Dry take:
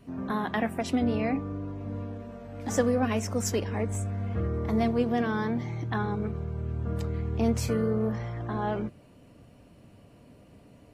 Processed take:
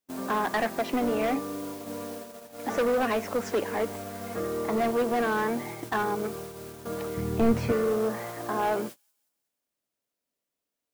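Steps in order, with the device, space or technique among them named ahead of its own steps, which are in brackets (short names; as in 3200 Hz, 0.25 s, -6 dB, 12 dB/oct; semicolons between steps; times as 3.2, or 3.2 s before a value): aircraft radio (BPF 360–2400 Hz; hard clip -28 dBFS, distortion -11 dB; white noise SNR 17 dB; gate -44 dBFS, range -41 dB); 7.17–7.72 tone controls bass +14 dB, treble -1 dB; thin delay 0.181 s, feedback 48%, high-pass 5300 Hz, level -23 dB; gain +6.5 dB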